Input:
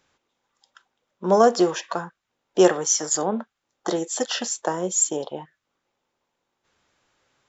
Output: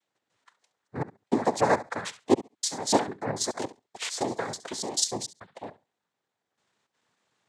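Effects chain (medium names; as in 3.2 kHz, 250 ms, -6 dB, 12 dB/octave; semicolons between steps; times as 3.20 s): slices played last to first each 146 ms, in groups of 3; flutter echo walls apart 11.7 m, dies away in 0.25 s; noise-vocoded speech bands 6; trim -5.5 dB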